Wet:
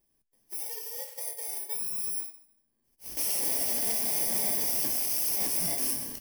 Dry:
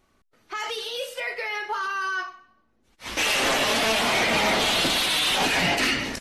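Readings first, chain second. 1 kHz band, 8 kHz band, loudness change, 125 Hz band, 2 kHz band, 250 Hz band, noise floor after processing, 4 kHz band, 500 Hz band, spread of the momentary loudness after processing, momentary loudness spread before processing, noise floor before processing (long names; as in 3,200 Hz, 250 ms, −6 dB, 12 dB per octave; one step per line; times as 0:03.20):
−19.5 dB, +1.5 dB, −4.5 dB, −12.0 dB, −22.5 dB, −12.5 dB, −75 dBFS, −15.5 dB, −15.0 dB, 11 LU, 11 LU, −66 dBFS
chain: samples in bit-reversed order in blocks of 32 samples
high-shelf EQ 7,300 Hz +9 dB
flanger 0.91 Hz, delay 5.2 ms, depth 3.6 ms, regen −66%
level −8 dB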